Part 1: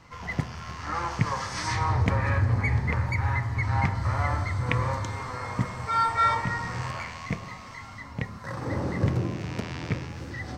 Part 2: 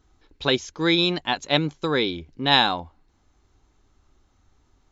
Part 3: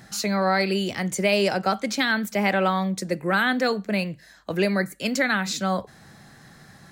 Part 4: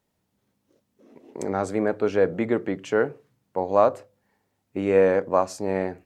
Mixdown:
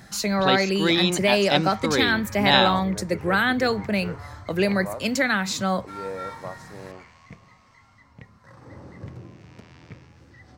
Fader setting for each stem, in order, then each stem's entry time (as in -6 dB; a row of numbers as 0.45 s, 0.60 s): -14.0 dB, -1.0 dB, +0.5 dB, -16.0 dB; 0.00 s, 0.00 s, 0.00 s, 1.10 s